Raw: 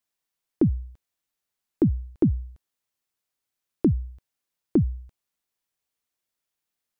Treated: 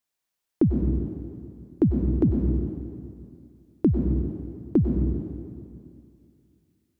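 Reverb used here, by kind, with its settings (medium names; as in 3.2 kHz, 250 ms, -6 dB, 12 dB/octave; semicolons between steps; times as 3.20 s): plate-style reverb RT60 2.4 s, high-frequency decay 0.85×, pre-delay 85 ms, DRR 2 dB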